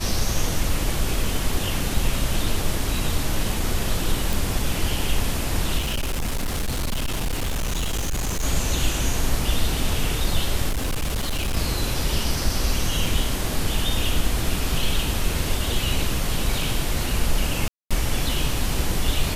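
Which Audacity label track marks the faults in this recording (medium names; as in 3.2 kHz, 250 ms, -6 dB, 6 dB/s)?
4.330000	4.330000	pop
5.780000	8.450000	clipped -21 dBFS
10.690000	11.570000	clipped -20.5 dBFS
13.060000	13.060000	dropout 2.5 ms
17.680000	17.910000	dropout 226 ms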